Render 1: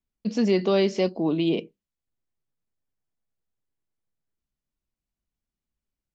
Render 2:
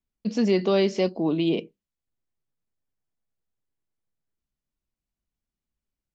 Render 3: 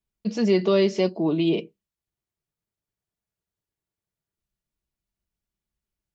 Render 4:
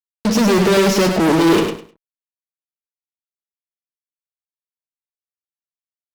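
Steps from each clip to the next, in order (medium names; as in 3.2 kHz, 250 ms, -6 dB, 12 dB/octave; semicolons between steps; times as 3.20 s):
no audible change
comb of notches 260 Hz; trim +2 dB
fuzz box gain 37 dB, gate -42 dBFS; on a send: feedback delay 102 ms, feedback 21%, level -6 dB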